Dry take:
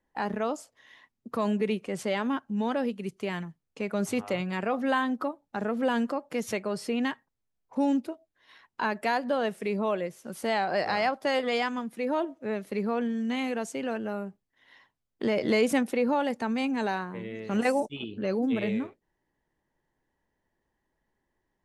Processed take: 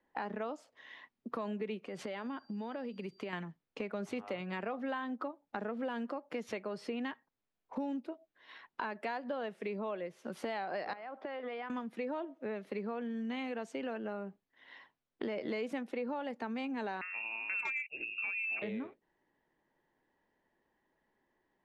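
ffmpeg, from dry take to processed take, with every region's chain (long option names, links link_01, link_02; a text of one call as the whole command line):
ffmpeg -i in.wav -filter_complex "[0:a]asettb=1/sr,asplit=3[link_01][link_02][link_03];[link_01]atrim=end=1.854[link_04];[link_02]atrim=start=1.85:end=3.33,asetpts=PTS-STARTPTS,afade=type=in:duration=0.004:curve=qsin,afade=type=out:start_time=1.476:duration=0.004:curve=qsin,acompressor=threshold=-36dB:ratio=4:attack=3.2:release=140:knee=1:detection=peak,aeval=exprs='val(0)+0.000631*sin(2*PI*4700*n/s)':channel_layout=same[link_05];[link_03]atrim=start=3.326[link_06];[link_04][link_05]acrossfade=duration=0.004:curve1=hsin:curve2=qsin[link_07];[link_07][link_06]acrossfade=duration=0.004:curve1=qsin:curve2=hsin,asettb=1/sr,asplit=3[link_08][link_09][link_10];[link_08]atrim=end=10.934[link_11];[link_09]atrim=start=10.93:end=11.7,asetpts=PTS-STARTPTS,afade=type=in:duration=0.004:curve=qsin,afade=type=out:start_time=0.766:duration=0.004:curve=qsin,highpass=230,lowpass=2400,acompressor=threshold=-38dB:ratio=6:attack=3.2:release=140:knee=1:detection=peak[link_12];[link_10]atrim=start=11.696[link_13];[link_11][link_12]acrossfade=duration=0.004:curve1=hsin:curve2=qsin[link_14];[link_14][link_13]acrossfade=duration=0.004:curve1=qsin:curve2=hsin,asettb=1/sr,asplit=3[link_15][link_16][link_17];[link_15]atrim=end=17.014[link_18];[link_16]atrim=start=17.01:end=18.62,asetpts=PTS-STARTPTS,afade=type=in:duration=0.004:curve=qsin,afade=type=out:start_time=1.606:duration=0.004:curve=qsin,lowpass=frequency=2500:width_type=q:width=0.5098,lowpass=frequency=2500:width_type=q:width=0.6013,lowpass=frequency=2500:width_type=q:width=0.9,lowpass=frequency=2500:width_type=q:width=2.563,afreqshift=-2900,asoftclip=type=hard:threshold=-20dB[link_19];[link_17]atrim=start=18.616[link_20];[link_18][link_19]acrossfade=duration=0.004:curve1=hsin:curve2=qsin[link_21];[link_21][link_20]acrossfade=duration=0.004:curve1=qsin:curve2=hsin,acrossover=split=180 4500:gain=0.251 1 0.141[link_22][link_23][link_24];[link_22][link_23][link_24]amix=inputs=3:normalize=0,acompressor=threshold=-40dB:ratio=4,volume=2.5dB" out.wav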